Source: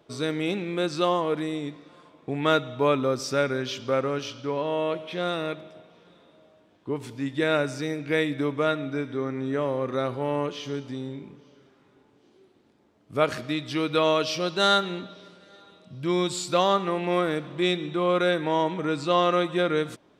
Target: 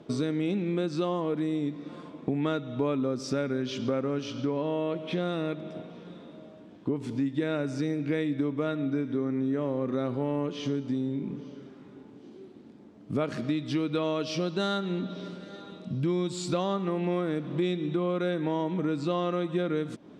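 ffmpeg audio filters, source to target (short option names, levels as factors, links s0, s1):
-af "lowpass=8900,equalizer=f=220:t=o:w=1.8:g=12.5,acompressor=threshold=0.0282:ratio=4,volume=1.41"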